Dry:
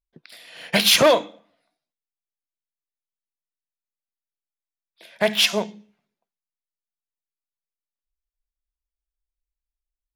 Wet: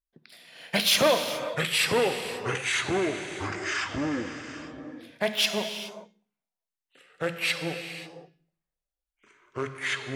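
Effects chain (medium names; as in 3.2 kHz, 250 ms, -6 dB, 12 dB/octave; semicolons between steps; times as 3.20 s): gated-style reverb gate 450 ms flat, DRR 7 dB; ever faster or slower copies 643 ms, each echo -4 st, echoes 3; trim -6.5 dB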